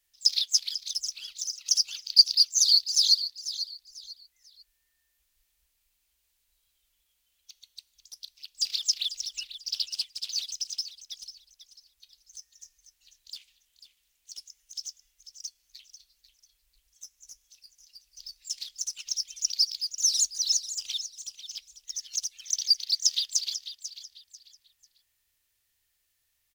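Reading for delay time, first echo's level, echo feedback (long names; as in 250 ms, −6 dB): 493 ms, −12.0 dB, 28%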